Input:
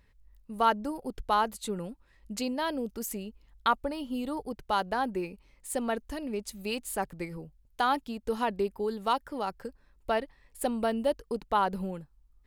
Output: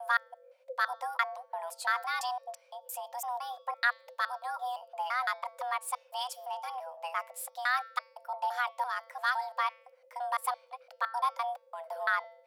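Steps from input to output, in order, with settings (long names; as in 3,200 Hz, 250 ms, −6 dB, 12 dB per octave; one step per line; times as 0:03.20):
slices reordered back to front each 170 ms, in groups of 4
frequency shifter +490 Hz
hum removal 224.4 Hz, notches 27
level −2.5 dB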